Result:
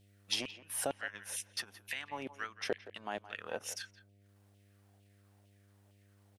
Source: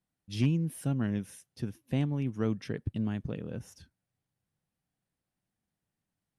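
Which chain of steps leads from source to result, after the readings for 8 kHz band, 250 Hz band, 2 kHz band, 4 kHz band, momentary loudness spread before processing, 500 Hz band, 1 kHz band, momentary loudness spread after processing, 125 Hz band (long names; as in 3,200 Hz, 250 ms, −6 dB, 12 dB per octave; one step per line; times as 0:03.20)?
+9.5 dB, −18.0 dB, +6.5 dB, +8.5 dB, 12 LU, −2.0 dB, +5.0 dB, 7 LU, −26.0 dB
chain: downward compressor 6 to 1, threshold −40 dBFS, peak gain reduction 17 dB
auto-filter high-pass saw down 2.2 Hz 540–3,000 Hz
transient designer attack +1 dB, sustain −8 dB
hum with harmonics 100 Hz, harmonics 7, −79 dBFS −8 dB per octave
far-end echo of a speakerphone 170 ms, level −15 dB
level +13.5 dB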